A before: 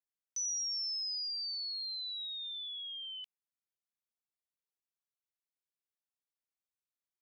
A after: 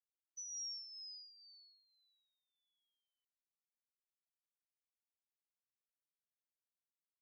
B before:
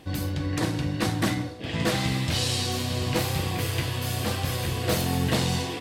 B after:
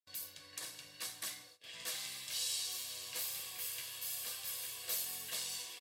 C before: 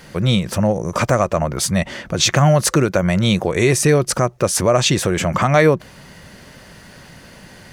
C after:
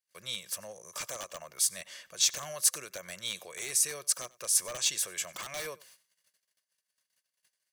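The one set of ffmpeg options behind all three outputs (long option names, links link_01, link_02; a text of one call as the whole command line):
ffmpeg -i in.wav -filter_complex "[0:a]agate=range=-36dB:threshold=-37dB:ratio=16:detection=peak,aderivative,aecho=1:1:1.8:0.4,acrossover=split=620|2500[link_01][link_02][link_03];[link_02]aeval=exprs='(mod(26.6*val(0)+1,2)-1)/26.6':channel_layout=same[link_04];[link_01][link_04][link_03]amix=inputs=3:normalize=0,aecho=1:1:95:0.0708,volume=-6.5dB" out.wav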